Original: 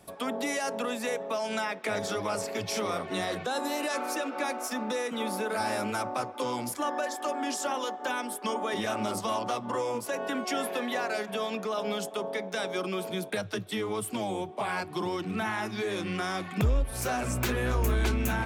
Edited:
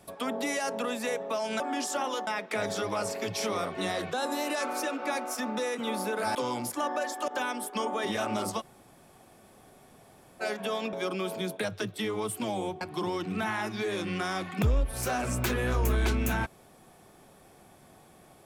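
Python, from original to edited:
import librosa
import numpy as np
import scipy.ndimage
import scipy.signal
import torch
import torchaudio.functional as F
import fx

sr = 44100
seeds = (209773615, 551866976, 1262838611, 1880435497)

y = fx.edit(x, sr, fx.cut(start_s=5.68, length_s=0.69),
    fx.move(start_s=7.3, length_s=0.67, to_s=1.6),
    fx.room_tone_fill(start_s=9.29, length_s=1.81, crossfade_s=0.04),
    fx.cut(start_s=11.62, length_s=1.04),
    fx.cut(start_s=14.54, length_s=0.26), tone=tone)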